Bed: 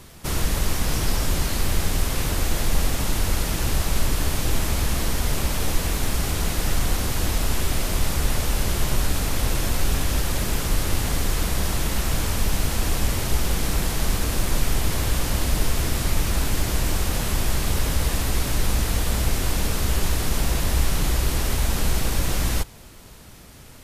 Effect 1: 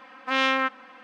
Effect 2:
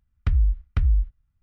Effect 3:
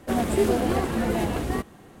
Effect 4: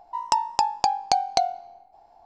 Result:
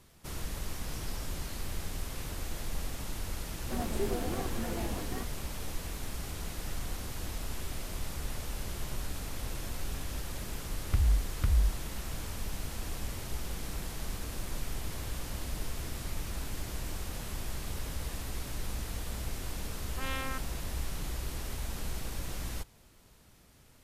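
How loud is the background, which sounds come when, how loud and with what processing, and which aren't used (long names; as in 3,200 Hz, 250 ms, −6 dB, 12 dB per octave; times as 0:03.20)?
bed −15 dB
0:03.62: mix in 3 −12.5 dB
0:10.67: mix in 2 −6.5 dB
0:19.70: mix in 1 −15.5 dB
not used: 4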